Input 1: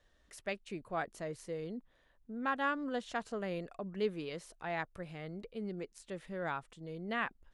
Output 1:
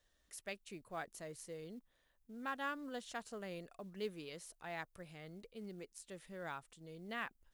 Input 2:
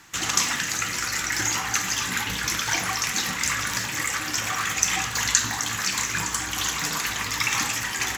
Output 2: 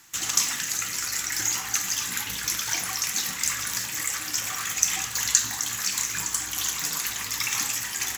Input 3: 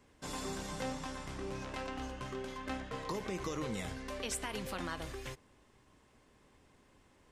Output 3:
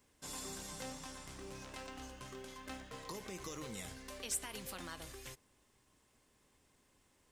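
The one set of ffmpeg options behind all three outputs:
-af "crystalizer=i=2.5:c=0,acrusher=bits=7:mode=log:mix=0:aa=0.000001,volume=-8.5dB"

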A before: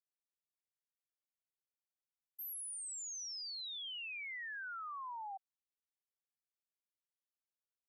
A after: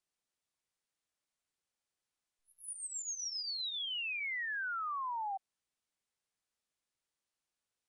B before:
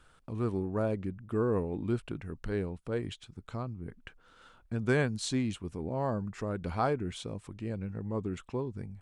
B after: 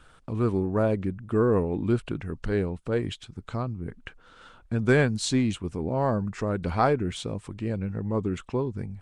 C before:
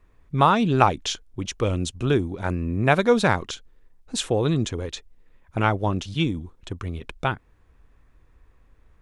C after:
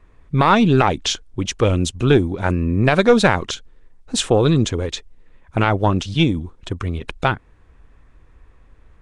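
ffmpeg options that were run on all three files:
-af "aeval=exprs='0.891*(cos(1*acos(clip(val(0)/0.891,-1,1)))-cos(1*PI/2))+0.316*(cos(2*acos(clip(val(0)/0.891,-1,1)))-cos(2*PI/2))':c=same,alimiter=level_in=8dB:limit=-1dB:release=50:level=0:latency=1,volume=-1dB" -ar 22050 -c:a nellymoser

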